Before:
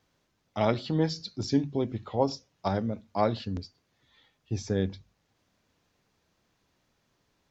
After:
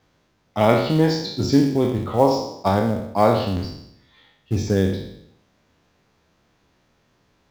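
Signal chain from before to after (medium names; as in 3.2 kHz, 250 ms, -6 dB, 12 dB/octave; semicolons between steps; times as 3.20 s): spectral sustain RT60 0.77 s; treble shelf 4.3 kHz -7.5 dB; in parallel at -6 dB: short-mantissa float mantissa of 2-bit; on the sum: trim +4.5 dB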